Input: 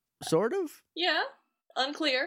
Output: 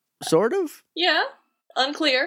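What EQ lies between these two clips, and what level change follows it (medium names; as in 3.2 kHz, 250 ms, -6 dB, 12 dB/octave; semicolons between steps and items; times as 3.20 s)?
high-pass 160 Hz 12 dB/octave; +7.5 dB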